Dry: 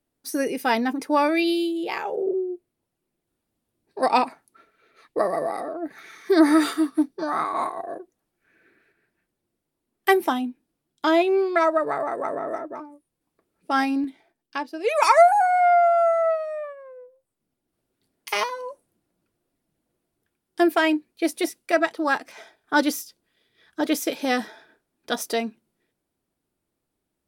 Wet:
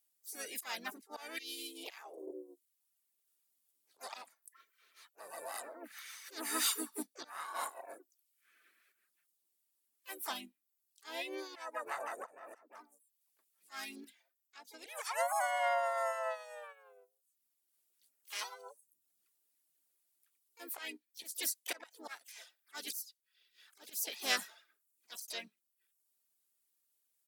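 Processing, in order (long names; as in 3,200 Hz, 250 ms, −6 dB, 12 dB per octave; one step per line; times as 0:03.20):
reverb reduction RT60 0.62 s
first difference
volume swells 410 ms
pitch-shifted copies added −4 semitones −7 dB, +5 semitones −8 dB, +7 semitones −16 dB
level +4 dB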